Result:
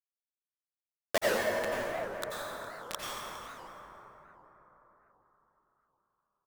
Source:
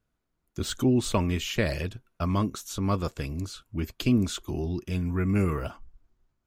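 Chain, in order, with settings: peaking EQ 170 Hz +6.5 dB 0.38 oct; comb 2.9 ms, depth 30%; dynamic bell 240 Hz, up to -5 dB, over -36 dBFS, Q 3; wah-wah 4.1 Hz 560–1400 Hz, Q 9; bit crusher 5-bit; echo from a far wall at 70 m, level -12 dB; plate-style reverb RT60 4.6 s, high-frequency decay 0.35×, pre-delay 75 ms, DRR -7.5 dB; warped record 78 rpm, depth 250 cents; trim +4 dB

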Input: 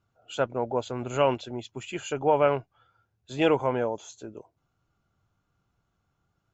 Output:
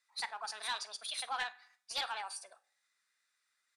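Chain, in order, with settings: Bessel high-pass 2 kHz, order 2; treble shelf 4.7 kHz +10.5 dB; in parallel at -2 dB: compression, threshold -48 dBFS, peak gain reduction 19.5 dB; on the sum: FDN reverb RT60 0.94 s, low-frequency decay 1.05×, high-frequency decay 0.75×, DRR 15 dB; saturation -28 dBFS, distortion -12 dB; formant shift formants -4 st; distance through air 140 m; delay 78 ms -20.5 dB; speed mistake 45 rpm record played at 78 rpm; trim +1 dB

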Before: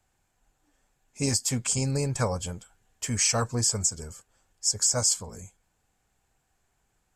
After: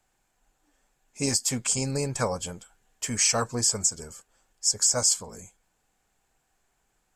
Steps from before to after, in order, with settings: peaking EQ 84 Hz -9 dB 1.6 oct; trim +1.5 dB

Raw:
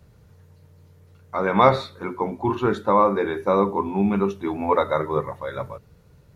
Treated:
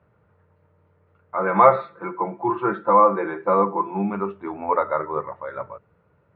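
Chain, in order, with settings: 1.37–4.10 s: comb 5.9 ms, depth 89%; cabinet simulation 120–2400 Hz, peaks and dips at 140 Hz -6 dB, 240 Hz -5 dB, 610 Hz +4 dB, 940 Hz +4 dB, 1.3 kHz +7 dB; trim -4.5 dB

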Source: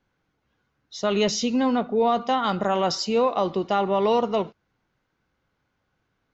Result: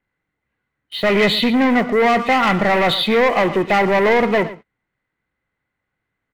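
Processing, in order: knee-point frequency compression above 1.9 kHz 1.5:1; waveshaping leveller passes 3; peaking EQ 2 kHz +14.5 dB 0.26 oct; on a send: delay 116 ms -16 dB

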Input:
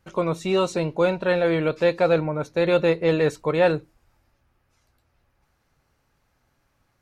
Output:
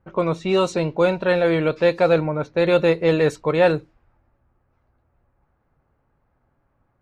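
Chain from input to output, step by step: level-controlled noise filter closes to 1.2 kHz, open at -16.5 dBFS; trim +2.5 dB

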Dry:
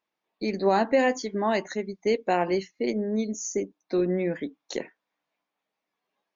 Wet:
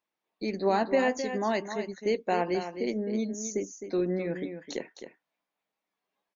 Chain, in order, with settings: delay 261 ms -9.5 dB; trim -3.5 dB

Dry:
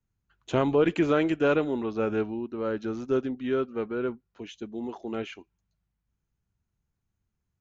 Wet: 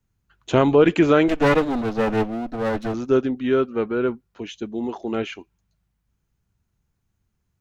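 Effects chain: 1.28–2.94 s: comb filter that takes the minimum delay 4 ms; trim +7.5 dB

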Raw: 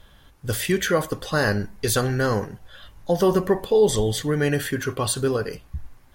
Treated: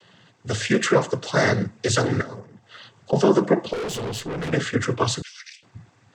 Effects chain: noise-vocoded speech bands 16; 2.21–3.13 s: compression 12:1, threshold -36 dBFS, peak gain reduction 18.5 dB; 3.73–4.53 s: valve stage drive 29 dB, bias 0.55; 5.22–5.63 s: steep high-pass 2 kHz 36 dB/octave; trim +2.5 dB

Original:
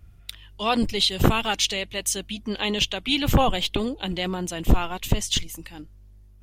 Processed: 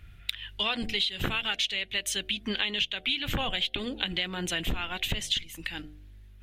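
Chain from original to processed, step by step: high-order bell 2.4 kHz +11.5 dB; de-hum 75.06 Hz, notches 10; compression 6:1, threshold -27 dBFS, peak gain reduction 18 dB

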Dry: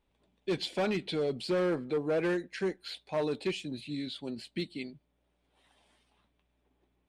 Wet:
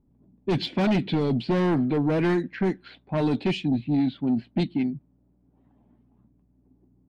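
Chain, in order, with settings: level-controlled noise filter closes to 560 Hz, open at -26 dBFS; ten-band graphic EQ 125 Hz +9 dB, 250 Hz +10 dB, 500 Hz -7 dB, 8 kHz -6 dB; sine folder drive 4 dB, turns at -18 dBFS

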